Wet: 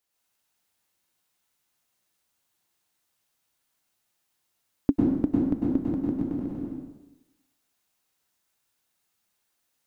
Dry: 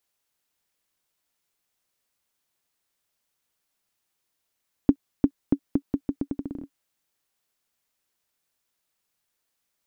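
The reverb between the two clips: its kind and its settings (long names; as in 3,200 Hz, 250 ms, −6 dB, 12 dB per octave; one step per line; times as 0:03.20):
dense smooth reverb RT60 0.96 s, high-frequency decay 0.9×, pre-delay 90 ms, DRR −4.5 dB
level −3 dB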